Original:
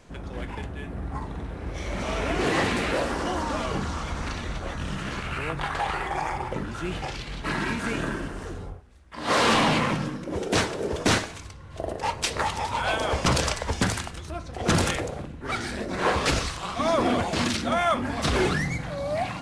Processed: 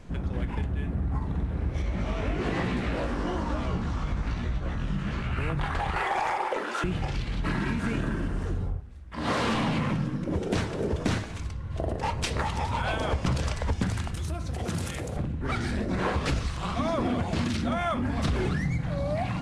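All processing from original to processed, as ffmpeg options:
ffmpeg -i in.wav -filter_complex "[0:a]asettb=1/sr,asplit=3[link_01][link_02][link_03];[link_01]atrim=end=1.824[link_04];[link_02]atrim=start=1.82:end=5.38,asetpts=PTS-STARTPTS,afade=type=in:duration=0.004:curve=qsin,afade=type=out:start_time=3.556:duration=0.004:curve=qsin,highshelf=frequency=10000:gain=-11,flanger=delay=16:depth=4.4:speed=1.1[link_05];[link_03]atrim=start=5.376[link_06];[link_04][link_05]acrossfade=duration=0.004:curve1=hsin:curve2=qsin[link_07];[link_07][link_06]acrossfade=duration=0.004:curve1=qsin:curve2=hsin,asettb=1/sr,asplit=3[link_08][link_09][link_10];[link_08]atrim=end=5.964[link_11];[link_09]atrim=start=5.96:end=6.84,asetpts=PTS-STARTPTS,afade=type=in:duration=0.004:curve=qsin,afade=type=out:start_time=0.876:duration=0.004:curve=qsin,highpass=frequency=430:width=0.5412,highpass=frequency=430:width=1.3066,aeval=exprs='0.141*sin(PI/2*1.58*val(0)/0.141)':channel_layout=same[link_12];[link_10]atrim=start=6.836[link_13];[link_11][link_12]acrossfade=duration=0.004:curve1=hsin:curve2=qsin[link_14];[link_14][link_13]acrossfade=duration=0.004:curve1=qsin:curve2=hsin,asettb=1/sr,asplit=3[link_15][link_16][link_17];[link_15]atrim=end=14.144[link_18];[link_16]atrim=start=14.14:end=15.17,asetpts=PTS-STARTPTS,afade=type=in:duration=0.004:curve=qsin,afade=type=out:start_time=1.026:duration=0.004:curve=qsin,highpass=56,aemphasis=mode=production:type=50fm,acompressor=threshold=-33dB:ratio=4:attack=3.2:release=140:knee=1:detection=peak[link_19];[link_17]atrim=start=15.166[link_20];[link_18][link_19]acrossfade=duration=0.004:curve1=hsin:curve2=qsin[link_21];[link_21][link_20]acrossfade=duration=0.004:curve1=qsin:curve2=hsin,bass=frequency=250:gain=11,treble=frequency=4000:gain=-4,bandreject=frequency=50:width_type=h:width=6,bandreject=frequency=100:width_type=h:width=6,bandreject=frequency=150:width_type=h:width=6,acompressor=threshold=-25dB:ratio=4" out.wav

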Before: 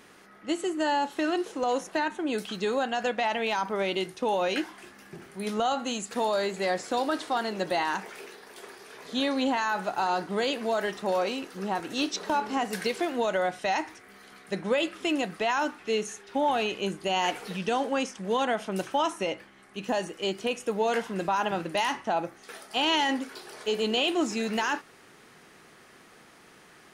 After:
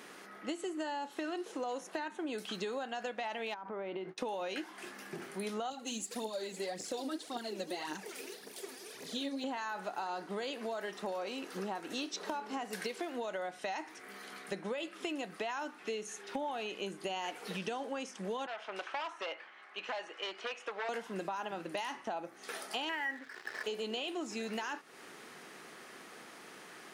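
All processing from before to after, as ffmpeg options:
ffmpeg -i in.wav -filter_complex "[0:a]asettb=1/sr,asplit=3[link_01][link_02][link_03];[link_01]atrim=end=3.544[link_04];[link_02]atrim=start=3.54:end=4.18,asetpts=PTS-STARTPTS,afade=type=in:duration=0.004:curve=qsin,afade=type=out:start_time=0.636:duration=0.004:curve=qsin,lowpass=1600,agate=range=-33dB:threshold=-40dB:ratio=3:release=100:detection=peak,acompressor=threshold=-34dB:ratio=6:attack=3.2:release=140:knee=1:detection=peak[link_05];[link_03]atrim=start=4.176[link_06];[link_04][link_05]acrossfade=duration=0.004:curve1=hsin:curve2=qsin[link_07];[link_07][link_06]acrossfade=duration=0.004:curve1=qsin:curve2=hsin,asettb=1/sr,asplit=3[link_08][link_09][link_10];[link_08]atrim=end=5.704[link_11];[link_09]atrim=start=5.7:end=9.44,asetpts=PTS-STARTPTS,afade=type=in:duration=0.004:curve=qsin,afade=type=out:start_time=3.736:duration=0.004:curve=qsin,equalizer=frequency=1200:width_type=o:width=2.4:gain=-13,aphaser=in_gain=1:out_gain=1:delay=4.2:decay=0.62:speed=1.8:type=triangular[link_12];[link_10]atrim=start=9.436[link_13];[link_11][link_12]acrossfade=duration=0.004:curve1=hsin:curve2=qsin[link_14];[link_14][link_13]acrossfade=duration=0.004:curve1=qsin:curve2=hsin,asettb=1/sr,asplit=3[link_15][link_16][link_17];[link_15]atrim=end=18.464[link_18];[link_16]atrim=start=18.46:end=20.89,asetpts=PTS-STARTPTS,afade=type=in:duration=0.004:curve=qsin,afade=type=out:start_time=2.426:duration=0.004:curve=qsin,aeval=exprs='0.0708*(abs(mod(val(0)/0.0708+3,4)-2)-1)':channel_layout=same,highpass=750,lowpass=3200[link_19];[link_17]atrim=start=20.886[link_20];[link_18][link_19]acrossfade=duration=0.004:curve1=hsin:curve2=qsin[link_21];[link_21][link_20]acrossfade=duration=0.004:curve1=qsin:curve2=hsin,asettb=1/sr,asplit=3[link_22][link_23][link_24];[link_22]atrim=end=22.894[link_25];[link_23]atrim=start=22.89:end=23.64,asetpts=PTS-STARTPTS,afade=type=in:duration=0.004:curve=qsin,afade=type=out:start_time=0.746:duration=0.004:curve=qsin,lowpass=frequency=1800:width_type=q:width=9.3,aeval=exprs='sgn(val(0))*max(abs(val(0))-0.00944,0)':channel_layout=same[link_26];[link_24]atrim=start=23.636[link_27];[link_25][link_26]acrossfade=duration=0.004:curve1=hsin:curve2=qsin[link_28];[link_28][link_27]acrossfade=duration=0.004:curve1=qsin:curve2=hsin,highpass=210,acompressor=threshold=-39dB:ratio=6,volume=2.5dB" out.wav

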